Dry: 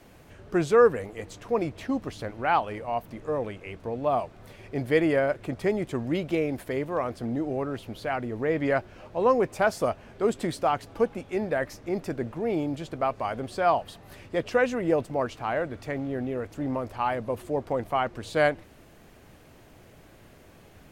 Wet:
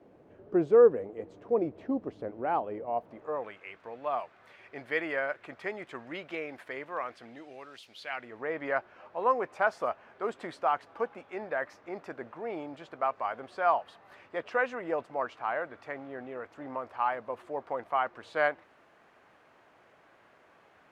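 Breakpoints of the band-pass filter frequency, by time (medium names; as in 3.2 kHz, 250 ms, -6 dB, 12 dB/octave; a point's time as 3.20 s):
band-pass filter, Q 1.1
2.85 s 410 Hz
3.58 s 1.6 kHz
6.97 s 1.6 kHz
7.85 s 4.7 kHz
8.45 s 1.2 kHz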